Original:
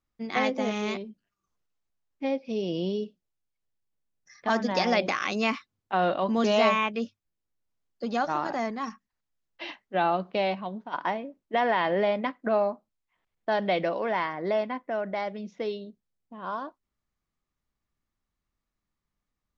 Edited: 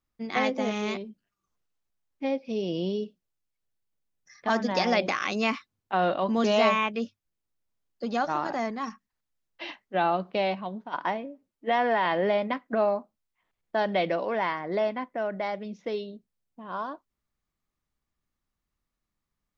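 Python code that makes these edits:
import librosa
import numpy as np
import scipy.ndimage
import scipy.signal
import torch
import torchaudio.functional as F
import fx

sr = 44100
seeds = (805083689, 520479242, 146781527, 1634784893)

y = fx.edit(x, sr, fx.stretch_span(start_s=11.26, length_s=0.53, factor=1.5), tone=tone)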